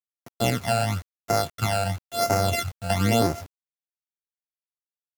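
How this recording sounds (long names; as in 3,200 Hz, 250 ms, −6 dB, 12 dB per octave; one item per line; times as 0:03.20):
a buzz of ramps at a fixed pitch in blocks of 64 samples
phaser sweep stages 12, 0.97 Hz, lowest notch 340–3,400 Hz
a quantiser's noise floor 8 bits, dither none
MP3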